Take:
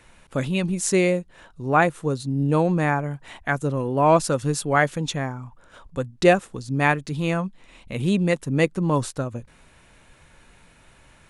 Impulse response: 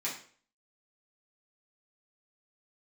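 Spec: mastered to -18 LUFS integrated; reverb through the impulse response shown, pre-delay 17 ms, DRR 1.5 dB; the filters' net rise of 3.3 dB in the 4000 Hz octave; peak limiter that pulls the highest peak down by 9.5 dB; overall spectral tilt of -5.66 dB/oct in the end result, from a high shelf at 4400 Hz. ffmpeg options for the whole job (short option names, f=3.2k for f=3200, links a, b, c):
-filter_complex "[0:a]equalizer=f=4k:t=o:g=6,highshelf=f=4.4k:g=-3.5,alimiter=limit=-13dB:level=0:latency=1,asplit=2[a][b];[1:a]atrim=start_sample=2205,adelay=17[c];[b][c]afir=irnorm=-1:irlink=0,volume=-6dB[d];[a][d]amix=inputs=2:normalize=0,volume=5dB"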